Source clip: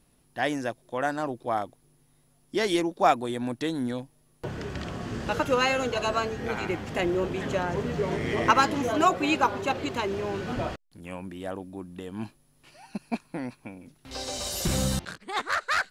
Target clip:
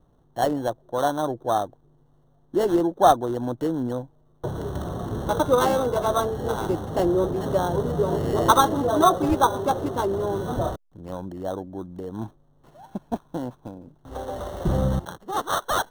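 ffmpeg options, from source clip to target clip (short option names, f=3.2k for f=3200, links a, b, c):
-filter_complex "[0:a]lowpass=2k,equalizer=f=230:w=2.5:g=-5.5,acrossover=split=540|1200[a][b][c];[c]acrusher=samples=18:mix=1:aa=0.000001[d];[a][b][d]amix=inputs=3:normalize=0,volume=6dB"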